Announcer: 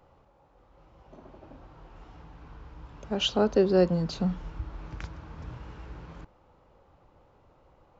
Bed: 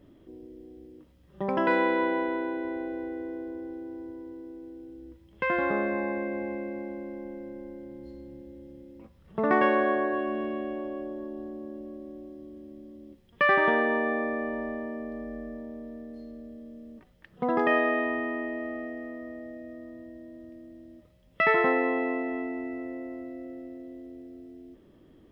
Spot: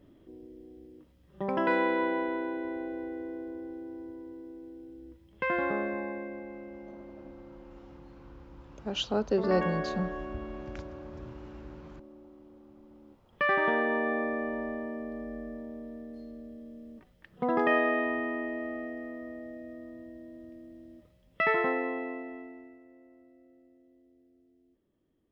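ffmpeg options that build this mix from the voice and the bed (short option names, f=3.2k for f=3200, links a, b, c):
-filter_complex "[0:a]adelay=5750,volume=-5dB[a];[1:a]volume=5.5dB,afade=t=out:st=5.58:d=0.87:silence=0.446684,afade=t=in:st=12.77:d=1.42:silence=0.398107,afade=t=out:st=21.02:d=1.78:silence=0.125893[b];[a][b]amix=inputs=2:normalize=0"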